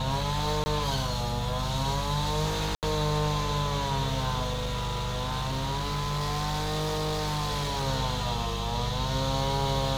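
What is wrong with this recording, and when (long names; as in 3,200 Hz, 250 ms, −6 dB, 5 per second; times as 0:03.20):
mains hum 50 Hz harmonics 4 −33 dBFS
0:00.64–0:00.66: drop-out 20 ms
0:02.75–0:02.83: drop-out 78 ms
0:04.52–0:07.88: clipping −26 dBFS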